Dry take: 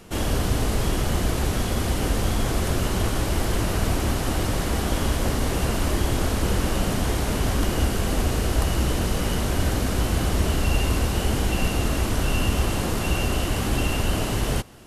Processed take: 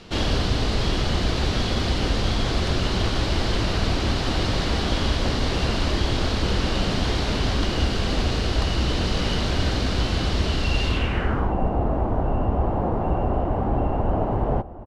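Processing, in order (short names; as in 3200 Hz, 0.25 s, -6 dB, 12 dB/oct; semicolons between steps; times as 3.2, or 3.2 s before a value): outdoor echo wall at 220 m, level -17 dB; vocal rider; low-pass sweep 4300 Hz -> 800 Hz, 10.86–11.57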